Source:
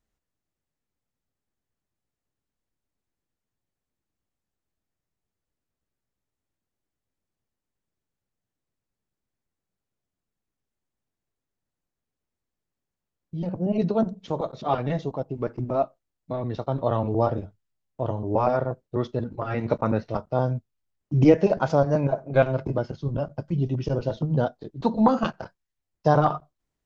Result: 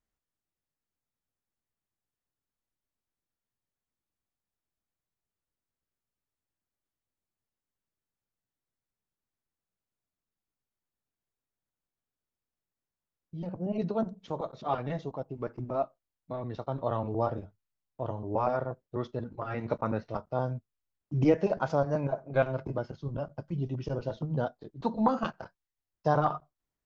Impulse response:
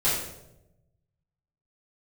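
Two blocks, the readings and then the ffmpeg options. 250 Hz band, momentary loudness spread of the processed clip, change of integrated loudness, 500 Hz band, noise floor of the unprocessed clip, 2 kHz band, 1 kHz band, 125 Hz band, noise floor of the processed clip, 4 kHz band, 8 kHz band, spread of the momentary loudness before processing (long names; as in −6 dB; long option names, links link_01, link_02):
−8.0 dB, 10 LU, −7.0 dB, −7.0 dB, below −85 dBFS, −5.0 dB, −5.5 dB, −8.0 dB, below −85 dBFS, −7.5 dB, can't be measured, 11 LU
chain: -af "equalizer=frequency=1200:width_type=o:width=1.6:gain=3.5,volume=-8dB"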